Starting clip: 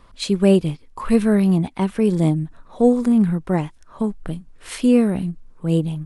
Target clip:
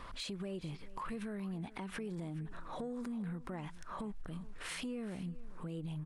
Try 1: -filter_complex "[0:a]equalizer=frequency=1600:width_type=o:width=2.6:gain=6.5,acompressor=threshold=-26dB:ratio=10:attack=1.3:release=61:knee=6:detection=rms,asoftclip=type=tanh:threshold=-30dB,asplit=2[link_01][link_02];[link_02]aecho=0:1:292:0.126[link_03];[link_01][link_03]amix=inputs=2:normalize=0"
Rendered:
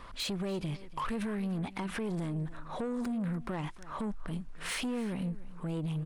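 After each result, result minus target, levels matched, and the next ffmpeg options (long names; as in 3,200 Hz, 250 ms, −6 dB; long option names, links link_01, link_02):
downward compressor: peak gain reduction −10.5 dB; echo 130 ms early
-filter_complex "[0:a]equalizer=frequency=1600:width_type=o:width=2.6:gain=6.5,acompressor=threshold=-37.5dB:ratio=10:attack=1.3:release=61:knee=6:detection=rms,asoftclip=type=tanh:threshold=-30dB,asplit=2[link_01][link_02];[link_02]aecho=0:1:292:0.126[link_03];[link_01][link_03]amix=inputs=2:normalize=0"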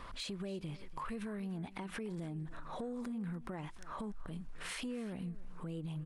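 echo 130 ms early
-filter_complex "[0:a]equalizer=frequency=1600:width_type=o:width=2.6:gain=6.5,acompressor=threshold=-37.5dB:ratio=10:attack=1.3:release=61:knee=6:detection=rms,asoftclip=type=tanh:threshold=-30dB,asplit=2[link_01][link_02];[link_02]aecho=0:1:422:0.126[link_03];[link_01][link_03]amix=inputs=2:normalize=0"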